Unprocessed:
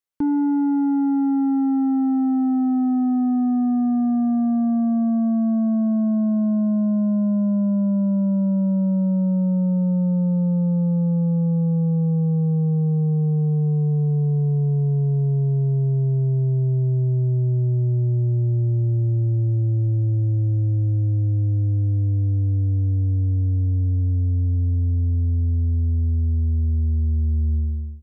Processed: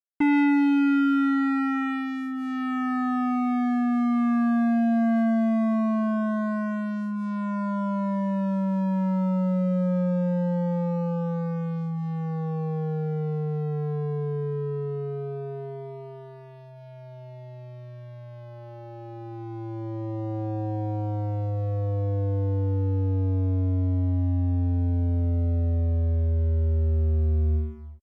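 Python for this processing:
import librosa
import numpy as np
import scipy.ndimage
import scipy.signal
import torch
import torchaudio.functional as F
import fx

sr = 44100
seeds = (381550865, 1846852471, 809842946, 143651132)

y = fx.graphic_eq_31(x, sr, hz=(125, 315, 500), db=(-8, 7, -6))
y = np.sign(y) * np.maximum(np.abs(y) - 10.0 ** (-42.5 / 20.0), 0.0)
y = fx.cheby_harmonics(y, sr, harmonics=(7,), levels_db=(-12,), full_scale_db=-12.0)
y = fx.comb_cascade(y, sr, direction='falling', hz=0.25)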